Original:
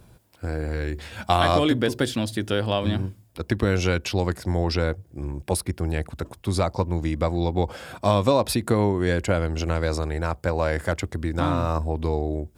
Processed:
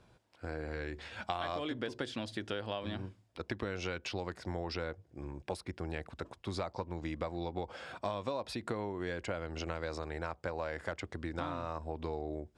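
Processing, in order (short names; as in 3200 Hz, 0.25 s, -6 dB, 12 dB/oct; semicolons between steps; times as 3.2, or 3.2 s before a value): low shelf 280 Hz -10.5 dB; compressor 5:1, threshold -28 dBFS, peak gain reduction 11 dB; air absorption 95 m; gain -5 dB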